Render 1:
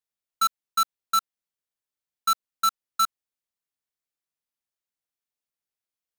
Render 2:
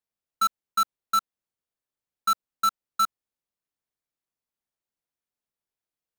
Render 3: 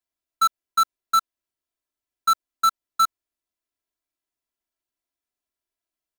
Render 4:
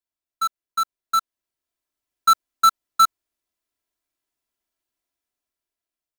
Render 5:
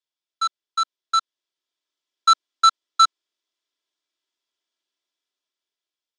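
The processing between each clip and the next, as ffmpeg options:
-af "tiltshelf=f=1300:g=4"
-af "aecho=1:1:3:0.92,volume=0.841"
-af "dynaudnorm=f=410:g=7:m=2.99,volume=0.596"
-af "highpass=f=300:w=0.5412,highpass=f=300:w=1.3066,equalizer=f=720:t=q:w=4:g=-6,equalizer=f=3400:t=q:w=4:g=10,equalizer=f=5100:t=q:w=4:g=5,lowpass=f=7600:w=0.5412,lowpass=f=7600:w=1.3066"

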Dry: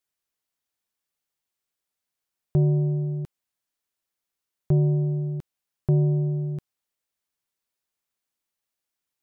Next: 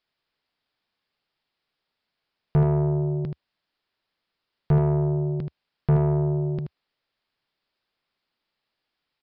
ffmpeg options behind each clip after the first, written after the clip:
-af "equalizer=f=74:t=o:w=0.55:g=-4.5,aresample=11025,asoftclip=type=tanh:threshold=0.0668,aresample=44100,aecho=1:1:78:0.422,volume=2.66"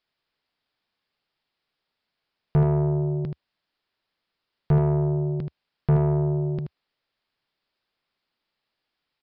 -af anull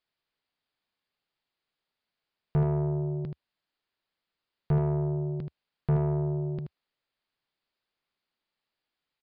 -af "aresample=11025,aresample=44100,volume=0.531"

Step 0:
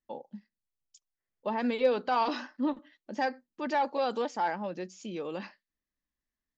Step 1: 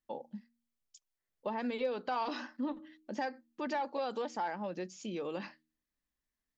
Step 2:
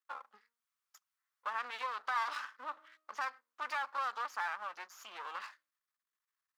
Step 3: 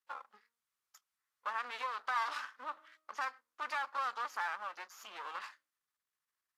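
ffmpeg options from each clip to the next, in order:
-af "bandreject=f=78.26:t=h:w=4,bandreject=f=156.52:t=h:w=4,bandreject=f=234.78:t=h:w=4,bandreject=f=313.04:t=h:w=4,acompressor=threshold=0.0178:ratio=2.5"
-af "aeval=exprs='max(val(0),0)':c=same,highpass=f=1200:t=q:w=3.4,volume=1.12"
-ar 32000 -c:a aac -b:a 64k

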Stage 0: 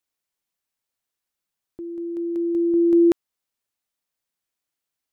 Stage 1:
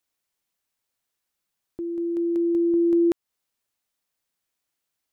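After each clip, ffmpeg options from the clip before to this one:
-af "acompressor=threshold=0.0631:ratio=2.5,volume=1.41"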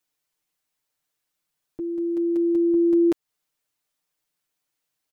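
-af "aecho=1:1:6.6:0.88,volume=0.841"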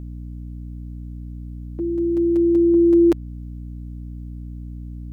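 -af "aeval=exprs='val(0)+0.0158*(sin(2*PI*60*n/s)+sin(2*PI*2*60*n/s)/2+sin(2*PI*3*60*n/s)/3+sin(2*PI*4*60*n/s)/4+sin(2*PI*5*60*n/s)/5)':c=same,volume=1.68"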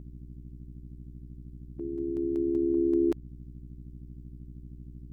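-af "tremolo=f=73:d=0.824,volume=0.422"

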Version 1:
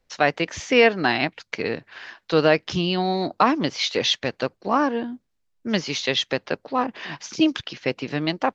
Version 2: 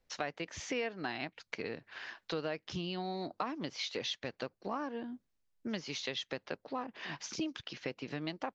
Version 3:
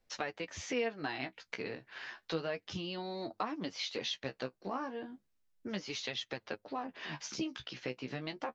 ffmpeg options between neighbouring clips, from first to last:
-af "acompressor=threshold=0.0251:ratio=3,volume=0.501"
-af "flanger=delay=8.7:depth=7.3:regen=24:speed=0.32:shape=sinusoidal,volume=1.5"

